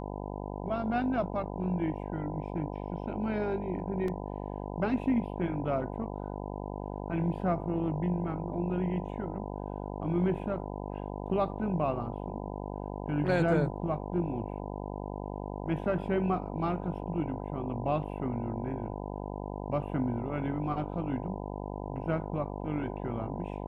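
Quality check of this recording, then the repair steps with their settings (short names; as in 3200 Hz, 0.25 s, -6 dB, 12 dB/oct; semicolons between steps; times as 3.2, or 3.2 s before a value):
buzz 50 Hz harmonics 20 -38 dBFS
4.08 gap 2.6 ms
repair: de-hum 50 Hz, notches 20; interpolate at 4.08, 2.6 ms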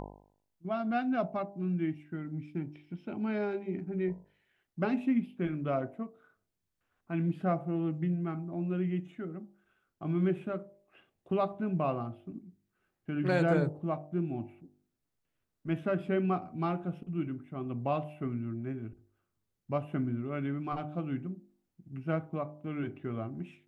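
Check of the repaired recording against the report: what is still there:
none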